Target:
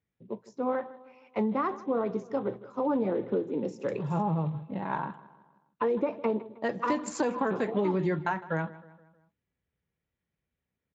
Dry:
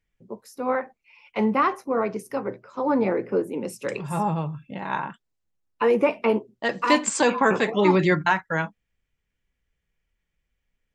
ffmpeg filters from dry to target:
-filter_complex "[0:a]equalizer=f=3.6k:w=0.43:g=-11,acompressor=threshold=-25dB:ratio=6,asplit=2[a][b];[b]adelay=157,lowpass=f=3k:p=1,volume=-17.5dB,asplit=2[c][d];[d]adelay=157,lowpass=f=3k:p=1,volume=0.5,asplit=2[e][f];[f]adelay=157,lowpass=f=3k:p=1,volume=0.5,asplit=2[g][h];[h]adelay=157,lowpass=f=3k:p=1,volume=0.5[i];[a][c][e][g][i]amix=inputs=5:normalize=0" -ar 16000 -c:a libspeex -b:a 34k

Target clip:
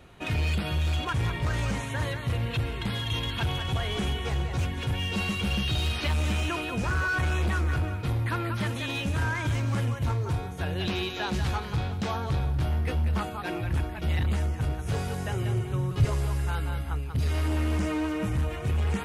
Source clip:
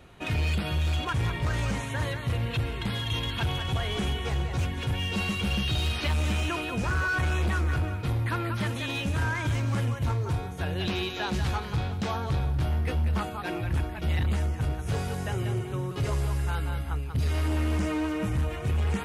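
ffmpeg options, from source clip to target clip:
-filter_complex "[0:a]asettb=1/sr,asplit=3[a][b][c];[a]atrim=end=15.344[d];[b]atrim=start=15.34:end=16.05,asetpts=PTS-STARTPTS,afade=t=in:d=0.004:c=qsin,afade=t=out:st=0.706:d=0.004:c=qsin,asubboost=boost=10:cutoff=170[e];[c]atrim=start=16.046[f];[d][e]acrossfade=d=0.004:c1=hsin:c2=qsin[g];[g][f]acrossfade=d=0.004:c1=qsin:c2=hsin"

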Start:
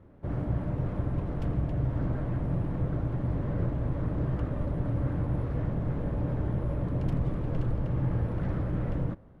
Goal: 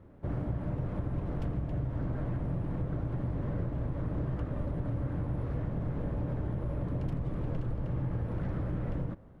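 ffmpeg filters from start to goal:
-af "acompressor=threshold=-29dB:ratio=6"

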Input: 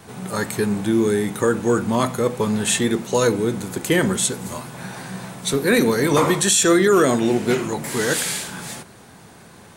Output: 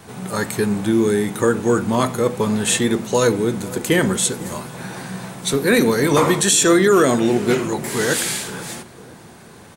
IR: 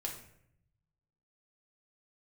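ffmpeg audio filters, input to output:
-filter_complex "[0:a]asplit=2[a][b];[b]adelay=499,lowpass=f=930:p=1,volume=-16.5dB,asplit=2[c][d];[d]adelay=499,lowpass=f=930:p=1,volume=0.49,asplit=2[e][f];[f]adelay=499,lowpass=f=930:p=1,volume=0.49,asplit=2[g][h];[h]adelay=499,lowpass=f=930:p=1,volume=0.49[i];[a][c][e][g][i]amix=inputs=5:normalize=0,volume=1.5dB"

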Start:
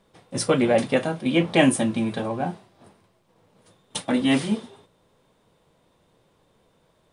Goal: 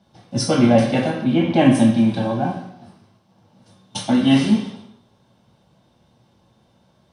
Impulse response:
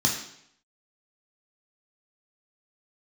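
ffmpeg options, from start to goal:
-filter_complex "[0:a]asettb=1/sr,asplit=3[a][b][c];[a]atrim=end=1.104[d];[b]atrim=start=1.1:end=1.75,asetpts=PTS-STARTPTS,afade=t=in:d=0.004:c=qsin,afade=t=out:st=0.646:d=0.004:c=qsin,highshelf=f=3.1k:g=-10[e];[c]atrim=start=1.746[f];[d][e]acrossfade=d=0.004:c1=hsin:c2=qsin[g];[g][f]acrossfade=d=0.004:c1=qsin:c2=hsin[h];[1:a]atrim=start_sample=2205,afade=t=out:st=0.41:d=0.01,atrim=end_sample=18522,asetrate=37485,aresample=44100[i];[h][i]afir=irnorm=-1:irlink=0,volume=-10.5dB"

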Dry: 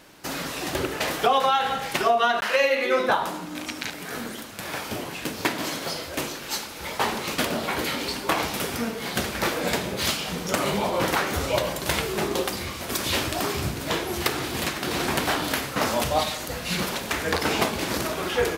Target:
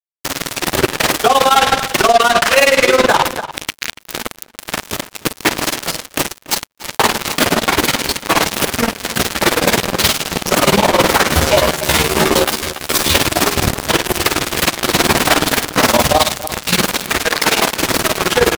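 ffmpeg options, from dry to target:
-filter_complex "[0:a]asettb=1/sr,asplit=3[a][b][c];[a]atrim=end=17.244[d];[b]atrim=start=17.24:end=17.8,asetpts=PTS-STARTPTS,afade=t=in:d=0.004:c=qsin,afade=t=out:st=0.556:d=0.004:c=qsin,highpass=f=460:p=1[e];[c]atrim=start=17.796[f];[d][e]acrossfade=d=0.004:c1=hsin:c2=qsin[g];[g][f]acrossfade=d=0.004:c1=qsin:c2=hsin,acrusher=bits=3:mix=0:aa=0.5,tremolo=f=19:d=0.92,asettb=1/sr,asplit=3[h][i][j];[h]atrim=end=11.314[k];[i]atrim=start=11.31:end=13.15,asetpts=PTS-STARTPTS,afade=t=in:d=0.004:c=qsin,afade=t=out:st=1.836:d=0.004:c=qsin,asplit=2[l][m];[m]adelay=13,volume=-2.5dB[n];[l][n]amix=inputs=2:normalize=0,atrim=end_sample=81144[o];[j]atrim=start=13.146[p];[k][o]acrossfade=d=0.004:c1=hsin:c2=qsin[q];[q][p]acrossfade=d=0.004:c1=qsin:c2=hsin,asplit=2[r][s];[s]adelay=285.7,volume=-21dB,highshelf=f=4k:g=-6.43[t];[r][t]amix=inputs=2:normalize=0,alimiter=level_in=23.5dB:limit=-1dB:release=50:level=0:latency=1,volume=-1dB"

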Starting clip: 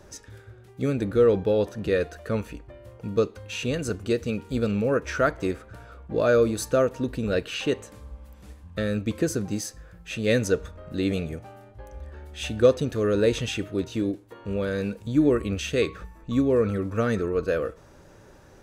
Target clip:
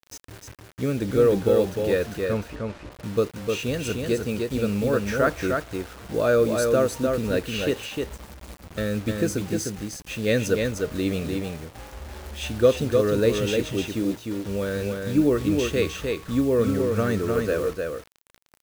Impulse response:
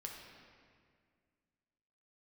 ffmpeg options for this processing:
-filter_complex "[0:a]acrusher=bits=6:mix=0:aa=0.000001,asettb=1/sr,asplit=3[a][b][c];[a]atrim=end=2.254[d];[b]atrim=start=2.25:end=2.92,asetpts=PTS-STARTPTS,afade=t=in:d=0.004:c=qsin,afade=t=out:st=0.666:d=0.004:c=qsin,adynamicsmooth=sensitivity=3:basefreq=4.8k[e];[c]atrim=start=2.916[f];[d][e]acrossfade=d=0.004:c1=hsin:c2=qsin[g];[g][f]acrossfade=d=0.004:c1=qsin:c2=hsin,aecho=1:1:304:0.631"

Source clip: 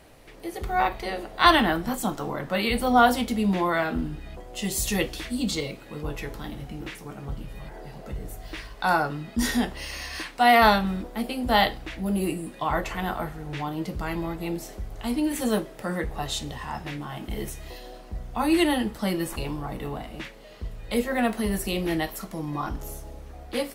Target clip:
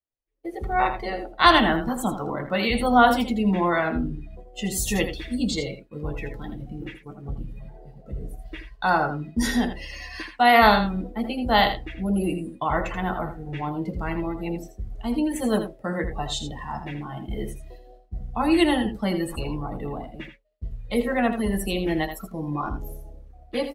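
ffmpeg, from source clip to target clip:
-af "afftdn=nr=17:nf=-36,agate=range=-33dB:threshold=-36dB:ratio=3:detection=peak,aecho=1:1:81:0.335,volume=1.5dB"

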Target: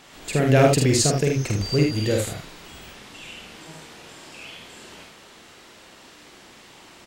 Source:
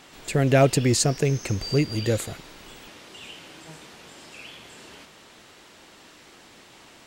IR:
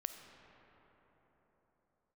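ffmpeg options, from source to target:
-filter_complex "[0:a]aecho=1:1:47|77:0.668|0.562,asettb=1/sr,asplit=3[a][b][c];[a]atrim=end=2.684[d];[b]atrim=start=2.68:end=3.56,asetpts=PTS-STARTPTS,afade=t=in:d=0.004:c=qsin,afade=t=out:st=0.876:d=0.004:c=qsin,afreqshift=-94[e];[c]atrim=start=3.556[f];[d][e]acrossfade=d=0.004:c1=hsin:c2=qsin[g];[g][f]acrossfade=d=0.004:c1=qsin:c2=hsin"

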